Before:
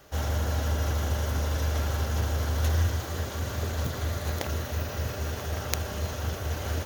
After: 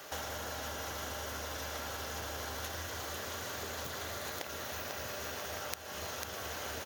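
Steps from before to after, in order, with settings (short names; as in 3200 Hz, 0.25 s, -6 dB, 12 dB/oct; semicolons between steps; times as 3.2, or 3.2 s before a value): HPF 700 Hz 6 dB/oct; echo 0.496 s -8.5 dB; compressor 6:1, threshold -47 dBFS, peak gain reduction 22.5 dB; gain +8.5 dB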